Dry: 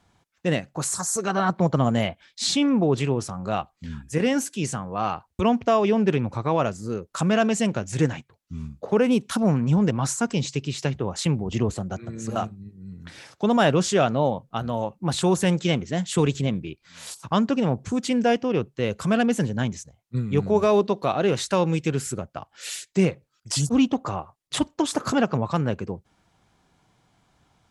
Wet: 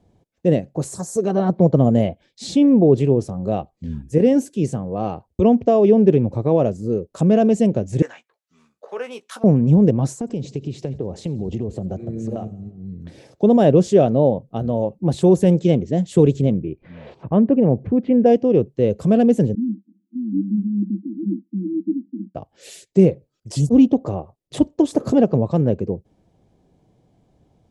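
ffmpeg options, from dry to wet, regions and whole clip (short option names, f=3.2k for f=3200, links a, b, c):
-filter_complex "[0:a]asettb=1/sr,asplit=3[a][b][c];[a]atrim=end=8.024[d];[b]atrim=start=8.02:end=9.44,asetpts=PTS-STARTPTS,afade=t=in:d=0.004:c=qsin,afade=t=out:st=1.416:d=0.004:c=qsin,highpass=f=1.3k:t=q:w=2.3,asplit=2[e][f];[f]adelay=17,volume=-10.5dB[g];[e][g]amix=inputs=2:normalize=0,atrim=end_sample=62622[h];[c]atrim=start=9.436[i];[d][h]acrossfade=d=0.004:c1=hsin:c2=qsin[j];[j][i]acrossfade=d=0.004:c1=qsin:c2=hsin,asettb=1/sr,asplit=3[k][l][m];[k]atrim=end=10.184[n];[l]atrim=start=10.18:end=12.99,asetpts=PTS-STARTPTS,afade=t=in:d=0.004:c=qsin,afade=t=out:st=2.806:d=0.004:c=qsin,acompressor=threshold=-27dB:ratio=10:attack=3.2:release=140:knee=1:detection=peak,highshelf=f=8.9k:g=-10,aecho=1:1:88|176|264|352|440:0.0841|0.0496|0.0293|0.0173|0.0102,atrim=end_sample=123921[o];[m]atrim=start=12.986[p];[n][o]acrossfade=d=0.004:c1=hsin:c2=qsin[q];[q][p]acrossfade=d=0.004:c1=qsin:c2=hsin,asettb=1/sr,asplit=3[r][s][t];[r]atrim=end=16.524[u];[s]atrim=start=16.52:end=18.26,asetpts=PTS-STARTPTS,afade=t=in:d=0.004:c=qsin,afade=t=out:st=1.736:d=0.004:c=qsin,lowpass=f=2.4k:w=0.5412,lowpass=f=2.4k:w=1.3066,acompressor=mode=upward:threshold=-30dB:ratio=2.5:attack=3.2:release=140:knee=2.83:detection=peak[v];[t]atrim=start=18.256[w];[u][v]acrossfade=d=0.004:c1=hsin:c2=qsin[x];[x][w]acrossfade=d=0.004:c1=qsin:c2=hsin,asettb=1/sr,asplit=3[y][z][aa];[y]atrim=end=19.554[ab];[z]atrim=start=19.55:end=22.35,asetpts=PTS-STARTPTS,afade=t=in:d=0.004:c=qsin,afade=t=out:st=2.796:d=0.004:c=qsin,acompressor=mode=upward:threshold=-38dB:ratio=2.5:attack=3.2:release=140:knee=2.83:detection=peak,asuperpass=centerf=250:order=20:qfactor=1.7[ac];[aa]atrim=start=22.346[ad];[ab][ac]acrossfade=d=0.004:c1=hsin:c2=qsin[ae];[ae][ad]acrossfade=d=0.004:c1=qsin:c2=hsin,lowshelf=f=780:t=q:w=1.5:g=13.5,bandreject=f=1.4k:w=15,volume=-7.5dB"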